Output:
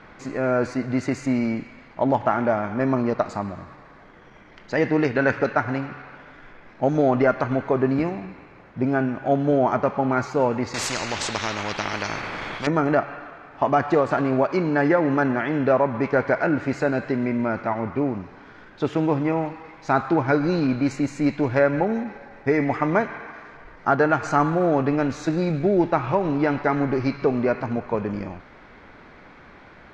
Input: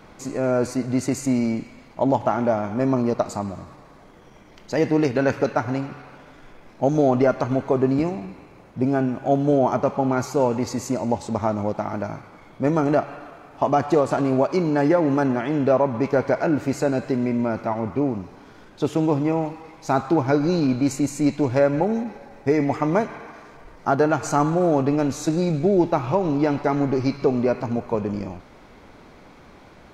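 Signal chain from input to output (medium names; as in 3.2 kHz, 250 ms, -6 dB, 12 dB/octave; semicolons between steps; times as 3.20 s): low-pass 4.5 kHz 12 dB/octave; peaking EQ 1.7 kHz +8.5 dB 1 oct; 10.74–12.67 s: spectrum-flattening compressor 4:1; trim -1.5 dB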